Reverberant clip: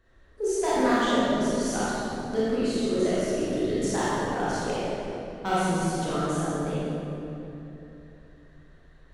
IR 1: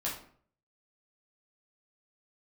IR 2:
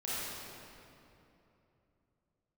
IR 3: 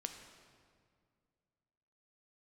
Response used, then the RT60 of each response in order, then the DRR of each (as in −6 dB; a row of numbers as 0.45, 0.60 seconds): 2; 0.55, 3.0, 2.1 seconds; −6.0, −10.0, 5.0 decibels